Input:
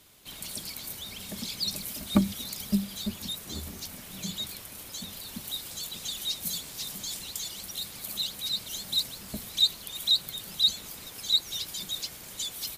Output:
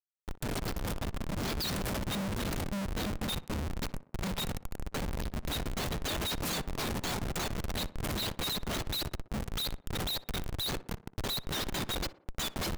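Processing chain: Schmitt trigger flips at -32.5 dBFS; tape echo 61 ms, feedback 56%, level -14.5 dB, low-pass 1700 Hz

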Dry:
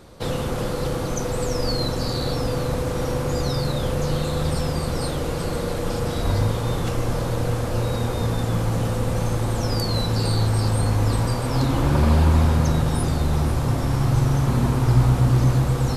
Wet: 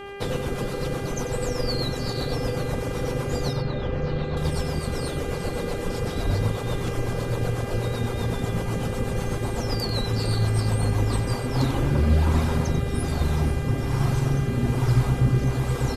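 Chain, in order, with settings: reverb removal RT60 0.67 s; rotary speaker horn 8 Hz, later 1.2 Hz, at 10.8; buzz 400 Hz, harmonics 8, -38 dBFS -5 dB/oct; 3.53–4.37 air absorption 230 m; on a send: echo 93 ms -10.5 dB

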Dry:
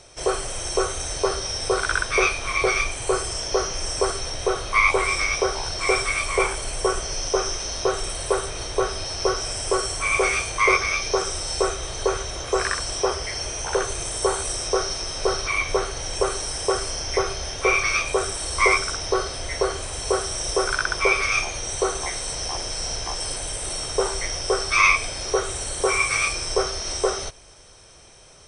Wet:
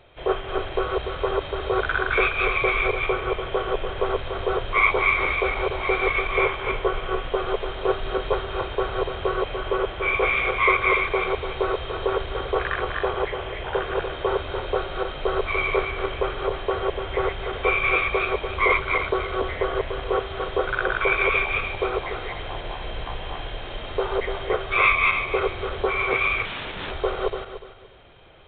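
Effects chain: regenerating reverse delay 0.146 s, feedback 49%, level -1 dB; 26.45–26.91 wrapped overs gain 19.5 dB; gain -2.5 dB; µ-law 64 kbps 8000 Hz

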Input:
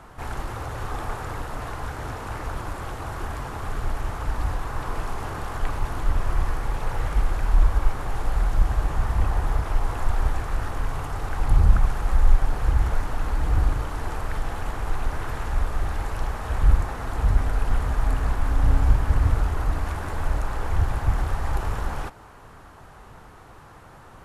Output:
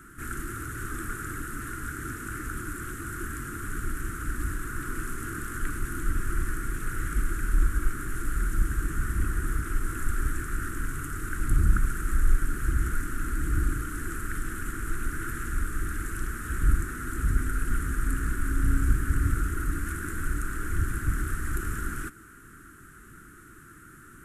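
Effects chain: EQ curve 100 Hz 0 dB, 340 Hz +9 dB, 560 Hz -20 dB, 880 Hz -25 dB, 1400 Hz +11 dB, 2300 Hz -1 dB, 4700 Hz -5 dB, 8000 Hz +14 dB; gain -5.5 dB

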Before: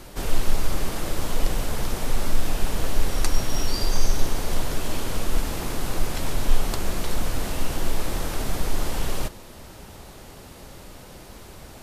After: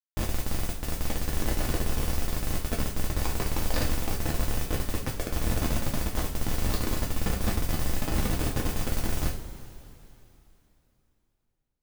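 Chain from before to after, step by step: Schmitt trigger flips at -25 dBFS; modulation noise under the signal 15 dB; two-slope reverb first 0.36 s, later 3.2 s, from -18 dB, DRR -2 dB; gain -7.5 dB

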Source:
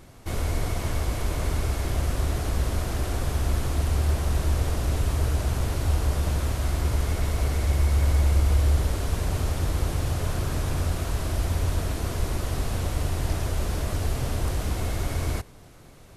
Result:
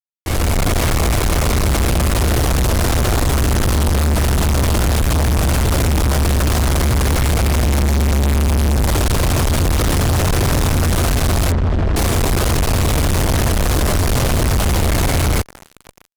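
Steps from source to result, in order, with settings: opening faded in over 0.56 s; AGC gain up to 3.5 dB; fuzz box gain 36 dB, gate -39 dBFS; 11.52–11.96 tape spacing loss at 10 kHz 33 dB

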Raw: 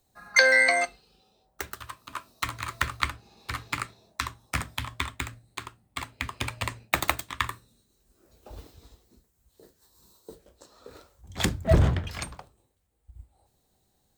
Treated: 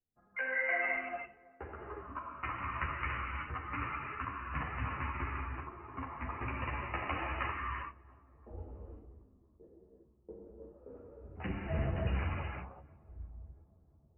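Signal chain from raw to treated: gate -58 dBFS, range -17 dB; low-pass opened by the level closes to 430 Hz, open at -21.5 dBFS; reverse; compressor 4:1, threshold -33 dBFS, peak gain reduction 16.5 dB; reverse; brick-wall FIR low-pass 3000 Hz; darkening echo 0.341 s, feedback 77%, low-pass 1000 Hz, level -22.5 dB; non-linear reverb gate 0.41 s flat, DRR -3 dB; ensemble effect

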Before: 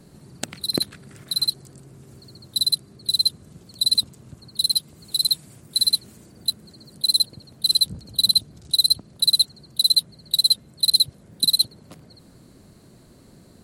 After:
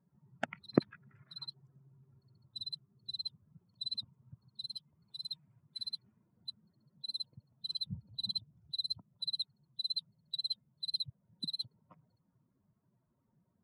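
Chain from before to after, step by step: per-bin expansion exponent 2; Chebyshev band-pass 140–1600 Hz, order 2; gain +2 dB

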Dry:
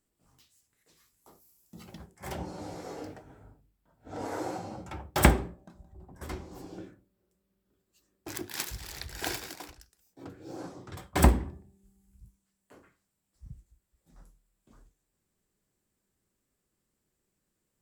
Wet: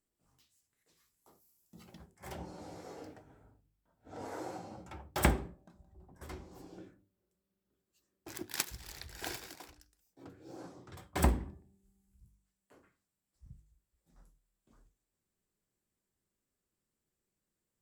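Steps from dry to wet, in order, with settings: de-hum 49.79 Hz, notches 6; 8.41–8.97 transient shaper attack +10 dB, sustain -2 dB; gain -7 dB

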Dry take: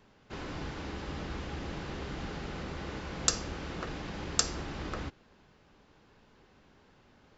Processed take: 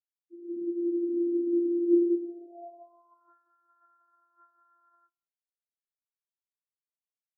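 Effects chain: sample sorter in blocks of 128 samples; in parallel at +2 dB: compressor 10:1, threshold -46 dBFS, peak gain reduction 25 dB; on the sum: fuzz box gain 36 dB, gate -42 dBFS; band-pass sweep 270 Hz -> 1400 Hz, 1.8–3.38; on a send: feedback echo 0.183 s, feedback 56%, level -9.5 dB; on the sum: spectral expander 4:1

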